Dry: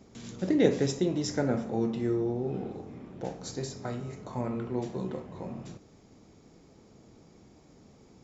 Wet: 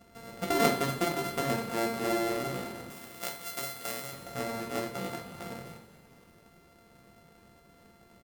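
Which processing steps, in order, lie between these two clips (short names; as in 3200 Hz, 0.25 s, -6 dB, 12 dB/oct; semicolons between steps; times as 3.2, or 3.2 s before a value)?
sample sorter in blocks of 64 samples; 2.9–4.13 tilt +3 dB/oct; echo 0.233 s -14.5 dB; on a send at -2 dB: reverb, pre-delay 3 ms; on the sum: gain -4 dB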